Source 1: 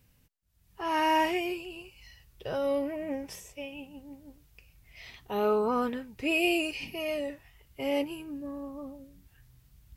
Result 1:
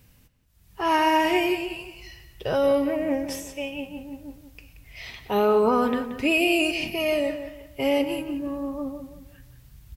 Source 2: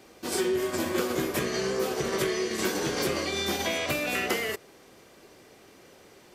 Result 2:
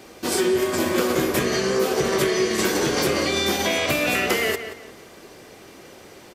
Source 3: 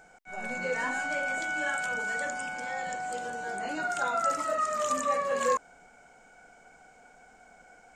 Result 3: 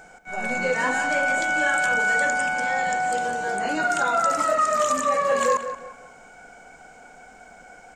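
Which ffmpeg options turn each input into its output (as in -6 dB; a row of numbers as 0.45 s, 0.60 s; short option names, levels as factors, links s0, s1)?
-filter_complex "[0:a]alimiter=limit=0.0891:level=0:latency=1:release=136,asplit=2[s0][s1];[s1]adelay=178,lowpass=f=3700:p=1,volume=0.316,asplit=2[s2][s3];[s3]adelay=178,lowpass=f=3700:p=1,volume=0.33,asplit=2[s4][s5];[s5]adelay=178,lowpass=f=3700:p=1,volume=0.33,asplit=2[s6][s7];[s7]adelay=178,lowpass=f=3700:p=1,volume=0.33[s8];[s0][s2][s4][s6][s8]amix=inputs=5:normalize=0,volume=2.66"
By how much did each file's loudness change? +6.5 LU, +7.0 LU, +8.5 LU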